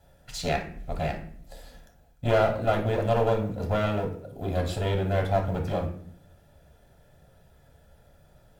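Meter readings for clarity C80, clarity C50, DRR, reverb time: 13.0 dB, 8.0 dB, 1.0 dB, 0.60 s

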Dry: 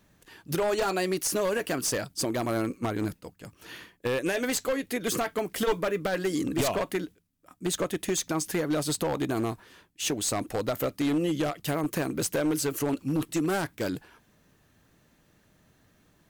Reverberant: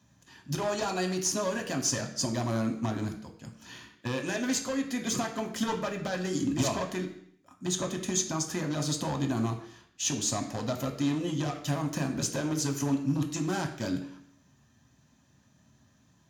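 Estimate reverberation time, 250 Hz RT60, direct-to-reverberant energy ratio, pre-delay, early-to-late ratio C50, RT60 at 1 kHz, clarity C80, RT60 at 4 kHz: 0.65 s, 0.65 s, 3.0 dB, 3 ms, 9.5 dB, 0.65 s, 12.5 dB, 0.65 s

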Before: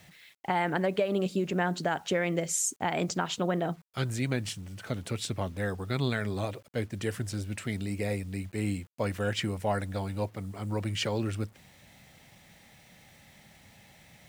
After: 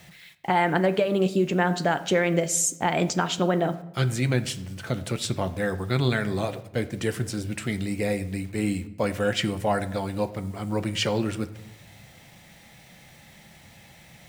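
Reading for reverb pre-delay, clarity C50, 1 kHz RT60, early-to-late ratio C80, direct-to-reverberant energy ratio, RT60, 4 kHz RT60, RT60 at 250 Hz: 6 ms, 15.5 dB, 0.85 s, 17.5 dB, 9.5 dB, 0.90 s, 0.60 s, 1.1 s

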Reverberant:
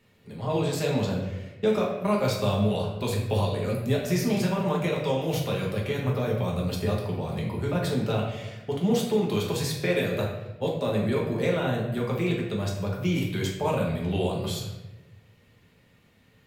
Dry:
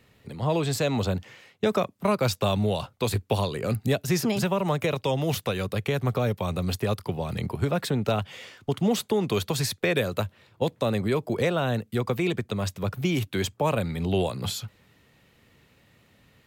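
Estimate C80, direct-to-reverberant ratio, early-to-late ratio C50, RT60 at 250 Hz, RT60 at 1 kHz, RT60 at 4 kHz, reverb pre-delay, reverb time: 6.0 dB, -3.0 dB, 3.0 dB, 1.3 s, 0.90 s, 0.70 s, 5 ms, 1.1 s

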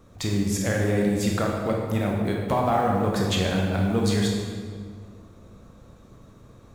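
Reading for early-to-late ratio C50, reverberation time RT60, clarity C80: 1.0 dB, 1.9 s, 3.0 dB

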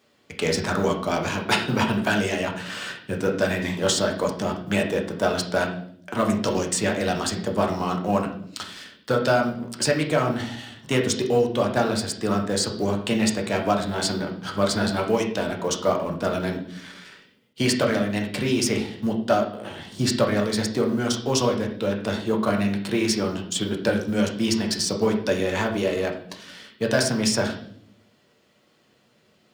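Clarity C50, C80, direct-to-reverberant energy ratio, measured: 8.0 dB, 12.0 dB, 1.0 dB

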